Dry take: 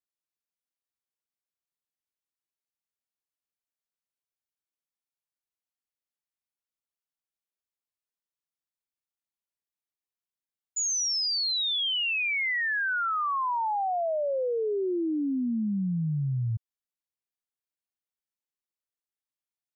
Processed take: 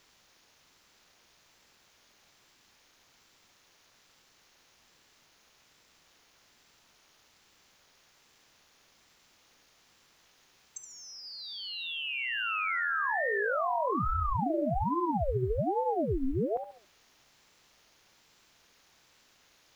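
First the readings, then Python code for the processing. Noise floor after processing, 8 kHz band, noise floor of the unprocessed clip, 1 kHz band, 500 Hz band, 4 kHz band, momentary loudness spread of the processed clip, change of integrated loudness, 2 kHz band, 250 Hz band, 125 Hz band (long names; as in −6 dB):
−65 dBFS, can't be measured, below −85 dBFS, −1.0 dB, −1.0 dB, −11.0 dB, 14 LU, −4.0 dB, −3.5 dB, −4.0 dB, −4.5 dB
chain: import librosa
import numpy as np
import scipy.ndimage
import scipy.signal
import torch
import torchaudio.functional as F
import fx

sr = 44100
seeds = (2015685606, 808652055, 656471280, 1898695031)

p1 = fx.bin_compress(x, sr, power=0.6)
p2 = fx.env_lowpass_down(p1, sr, base_hz=2100.0, full_db=-30.5)
p3 = fx.quant_dither(p2, sr, seeds[0], bits=12, dither='triangular')
p4 = p3 + fx.echo_feedback(p3, sr, ms=71, feedback_pct=36, wet_db=-9, dry=0)
y = fx.ring_lfo(p4, sr, carrier_hz=410.0, swing_pct=70, hz=1.2)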